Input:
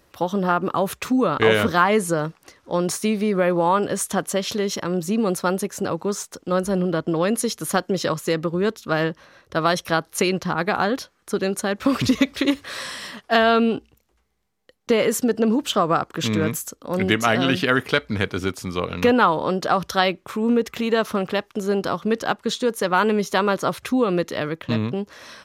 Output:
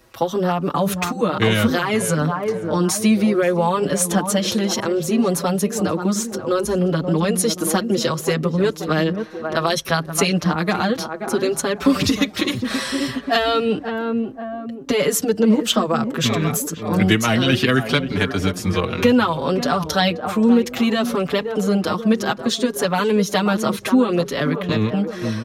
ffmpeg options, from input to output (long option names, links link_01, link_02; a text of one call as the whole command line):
ffmpeg -i in.wav -filter_complex "[0:a]asplit=2[link_01][link_02];[link_02]adelay=530,lowpass=frequency=1000:poles=1,volume=-9.5dB,asplit=2[link_03][link_04];[link_04]adelay=530,lowpass=frequency=1000:poles=1,volume=0.49,asplit=2[link_05][link_06];[link_06]adelay=530,lowpass=frequency=1000:poles=1,volume=0.49,asplit=2[link_07][link_08];[link_08]adelay=530,lowpass=frequency=1000:poles=1,volume=0.49,asplit=2[link_09][link_10];[link_10]adelay=530,lowpass=frequency=1000:poles=1,volume=0.49[link_11];[link_01][link_03][link_05][link_07][link_09][link_11]amix=inputs=6:normalize=0,acrossover=split=240|3000[link_12][link_13][link_14];[link_13]acompressor=threshold=-25dB:ratio=3[link_15];[link_12][link_15][link_14]amix=inputs=3:normalize=0,asplit=2[link_16][link_17];[link_17]adelay=5.8,afreqshift=0.63[link_18];[link_16][link_18]amix=inputs=2:normalize=1,volume=8.5dB" out.wav